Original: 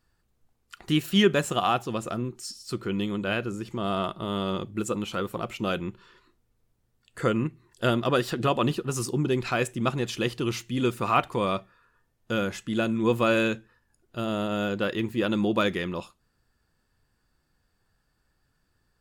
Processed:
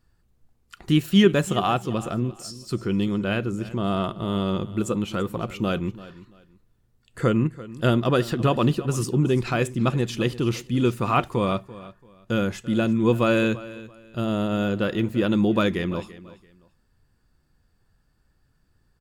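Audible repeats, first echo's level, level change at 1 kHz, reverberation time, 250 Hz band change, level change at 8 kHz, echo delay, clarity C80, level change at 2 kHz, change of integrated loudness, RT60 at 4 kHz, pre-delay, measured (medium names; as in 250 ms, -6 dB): 2, -17.5 dB, +1.0 dB, no reverb, +5.0 dB, 0.0 dB, 338 ms, no reverb, +0.5 dB, +3.5 dB, no reverb, no reverb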